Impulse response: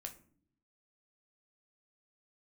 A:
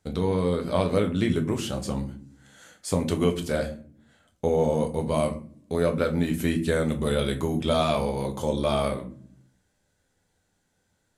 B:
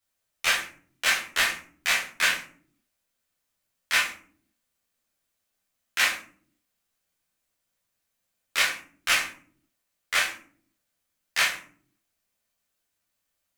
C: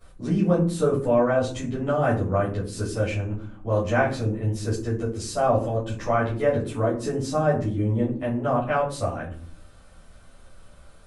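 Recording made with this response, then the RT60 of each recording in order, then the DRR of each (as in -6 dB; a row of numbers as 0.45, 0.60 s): A; not exponential, not exponential, not exponential; 4.0, -5.5, -14.5 dB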